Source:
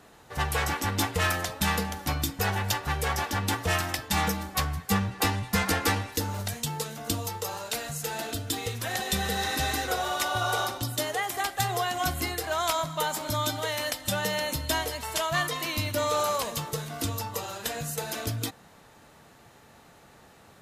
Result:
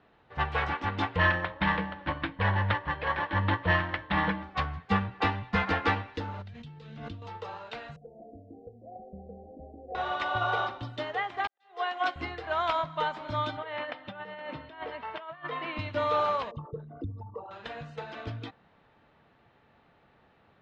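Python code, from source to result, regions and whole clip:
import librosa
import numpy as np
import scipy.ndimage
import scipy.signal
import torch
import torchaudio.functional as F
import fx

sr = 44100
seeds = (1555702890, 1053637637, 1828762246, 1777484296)

y = fx.chain(x, sr, fx.ripple_eq(per_octave=1.2, db=12),
    fx.resample_linear(factor=6), at=(1.16, 4.43))
y = fx.chain(y, sr, fx.lowpass(hz=2500.0, slope=6),
    fx.peak_eq(hz=840.0, db=-14.0, octaves=3.0),
    fx.pre_swell(db_per_s=26.0), at=(6.42, 7.22))
y = fx.chain(y, sr, fx.cheby_ripple(hz=750.0, ripple_db=6),
    fx.peak_eq(hz=130.0, db=-15.0, octaves=0.66),
    fx.band_squash(depth_pct=40), at=(7.96, 9.95))
y = fx.chain(y, sr, fx.highpass(hz=340.0, slope=24),
    fx.auto_swell(attack_ms=258.0),
    fx.band_widen(depth_pct=100), at=(11.47, 12.16))
y = fx.chain(y, sr, fx.bandpass_edges(low_hz=170.0, high_hz=2700.0),
    fx.over_compress(threshold_db=-33.0, ratio=-0.5), at=(13.57, 15.79))
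y = fx.chain(y, sr, fx.envelope_sharpen(power=3.0),
    fx.spacing_loss(db_at_10k=26), at=(16.51, 17.51))
y = scipy.signal.sosfilt(scipy.signal.butter(4, 3400.0, 'lowpass', fs=sr, output='sos'), y)
y = fx.dynamic_eq(y, sr, hz=1100.0, q=0.9, threshold_db=-42.0, ratio=4.0, max_db=4)
y = fx.upward_expand(y, sr, threshold_db=-35.0, expansion=1.5)
y = y * librosa.db_to_amplitude(-1.0)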